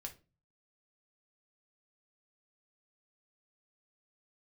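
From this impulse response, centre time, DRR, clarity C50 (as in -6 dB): 9 ms, 2.5 dB, 14.0 dB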